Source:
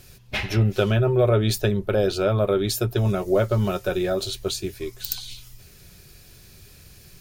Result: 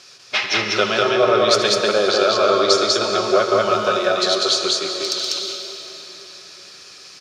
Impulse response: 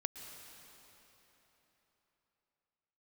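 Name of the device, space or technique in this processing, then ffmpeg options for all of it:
station announcement: -filter_complex "[0:a]asettb=1/sr,asplit=3[s0][s1][s2];[s0]atrim=end=1.564[s3];[s1]atrim=start=1.56:end=3.11,asetpts=PTS-STARTPTS,afade=t=in:d=0.004:c=qsin,afade=t=out:st=1.546:d=0.004:c=qsin,lowpass=f=8400:w=0.5412,lowpass=f=8400:w=1.3066[s4];[s2]atrim=start=3.106[s5];[s3][s4]acrossfade=d=0.004:c1=hsin:c2=qsin[s6];[s6][s5]acrossfade=d=0.004:c1=qsin:c2=hsin,highpass=430,lowpass=4800,equalizer=f=1200:t=o:w=0.37:g=9,aecho=1:1:75.8|195.3:0.251|0.891[s7];[1:a]atrim=start_sample=2205[s8];[s7][s8]afir=irnorm=-1:irlink=0,equalizer=f=5500:t=o:w=1.2:g=12.5,volume=1.88"

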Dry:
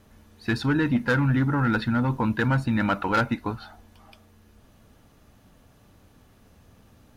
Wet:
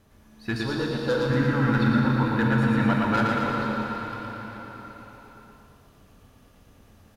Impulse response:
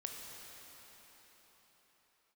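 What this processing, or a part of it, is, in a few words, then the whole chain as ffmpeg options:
cathedral: -filter_complex "[1:a]atrim=start_sample=2205[s0];[0:a][s0]afir=irnorm=-1:irlink=0,asettb=1/sr,asplit=3[s1][s2][s3];[s1]atrim=end=0.624[s4];[s2]atrim=start=0.62:end=1.3,asetpts=PTS-STARTPTS,afade=t=in:d=0.004:c=qsin,afade=t=out:st=0.676:d=0.004:c=qsin,equalizer=f=125:t=o:w=1:g=-6,equalizer=f=250:t=o:w=1:g=-10,equalizer=f=500:t=o:w=1:g=8,equalizer=f=2000:t=o:w=1:g=-11,equalizer=f=4000:t=o:w=1:g=6[s5];[s3]atrim=start=1.296[s6];[s4][s5]acrossfade=d=0.004:c1=hsin:c2=qsin[s7];[s7][s6]acrossfade=d=0.004:c1=qsin:c2=hsin,aecho=1:1:115|230|345|460|575|690|805|920|1035:0.668|0.401|0.241|0.144|0.0866|0.052|0.0312|0.0187|0.0112"

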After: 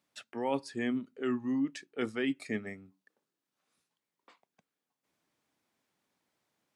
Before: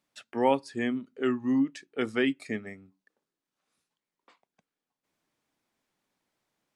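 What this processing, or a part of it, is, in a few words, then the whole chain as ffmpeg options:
compression on the reversed sound: -af "areverse,acompressor=threshold=0.0398:ratio=6,areverse,highpass=56"

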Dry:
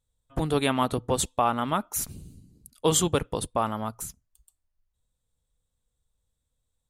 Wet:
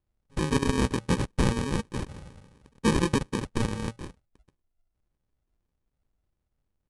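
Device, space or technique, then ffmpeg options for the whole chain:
crushed at another speed: -af "asetrate=88200,aresample=44100,acrusher=samples=32:mix=1:aa=0.000001,asetrate=22050,aresample=44100"

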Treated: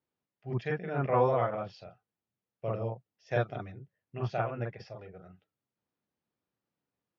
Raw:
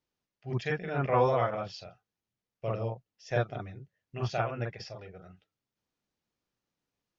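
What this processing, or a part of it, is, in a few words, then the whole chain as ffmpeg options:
through cloth: -filter_complex "[0:a]highpass=86,asettb=1/sr,asplit=3[s0][s1][s2];[s0]atrim=end=3.314[s3];[s1]atrim=start=3.31:end=3.72,asetpts=PTS-STARTPTS,afade=t=in:d=0.004:c=qsin,afade=t=out:st=0.406:d=0.004:c=qsin,highshelf=f=2800:g=10[s4];[s2]atrim=start=3.716[s5];[s3][s4]acrossfade=d=0.004:c1=hsin:c2=qsin[s6];[s6][s5]acrossfade=d=0.004:c1=qsin:c2=hsin,lowpass=6400,highshelf=f=3100:g=-13"

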